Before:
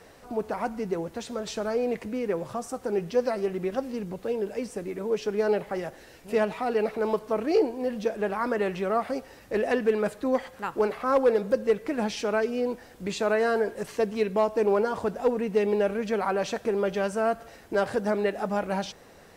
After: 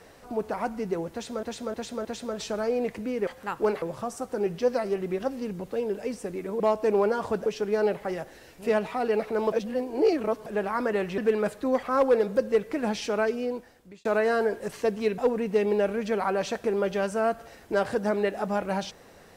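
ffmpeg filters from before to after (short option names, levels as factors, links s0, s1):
-filter_complex "[0:a]asplit=14[s0][s1][s2][s3][s4][s5][s6][s7][s8][s9][s10][s11][s12][s13];[s0]atrim=end=1.432[s14];[s1]atrim=start=1.118:end=1.432[s15];[s2]atrim=start=1.118:end=1.432[s16];[s3]atrim=start=1.118:end=2.342[s17];[s4]atrim=start=10.428:end=10.982[s18];[s5]atrim=start=2.338:end=5.122[s19];[s6]atrim=start=14.328:end=15.192[s20];[s7]atrim=start=5.118:end=7.182[s21];[s8]atrim=start=7.178:end=8.122,asetpts=PTS-STARTPTS,areverse[s22];[s9]atrim=start=8.118:end=8.842[s23];[s10]atrim=start=9.778:end=10.432[s24];[s11]atrim=start=10.978:end=13.2,asetpts=PTS-STARTPTS,afade=t=out:st=1.452:d=0.77[s25];[s12]atrim=start=13.2:end=14.332,asetpts=PTS-STARTPTS,afade=t=in:d=0.004:c=hsin[s26];[s13]atrim=start=15.188[s27];[s14][s15]acrossfade=d=0.004:c1=hsin:c2=hsin[s28];[s28][s16]acrossfade=d=0.004:c1=hsin:c2=hsin[s29];[s29][s17]acrossfade=d=0.004:c1=hsin:c2=hsin[s30];[s30][s18]acrossfade=d=0.004:c1=hsin:c2=hsin[s31];[s31][s19]acrossfade=d=0.004:c1=hsin:c2=hsin[s32];[s32][s20]acrossfade=d=0.004:c1=hsin:c2=hsin[s33];[s33][s21]acrossfade=d=0.004:c1=hsin:c2=hsin[s34];[s34][s22]acrossfade=d=0.004:c1=hsin:c2=hsin[s35];[s35][s23]acrossfade=d=0.004:c1=hsin:c2=hsin[s36];[s36][s24]acrossfade=d=0.004:c1=hsin:c2=hsin[s37];[s25][s26]concat=n=2:v=0:a=1[s38];[s37][s38]acrossfade=d=0.004:c1=hsin:c2=hsin[s39];[s39][s27]acrossfade=d=0.004:c1=hsin:c2=hsin"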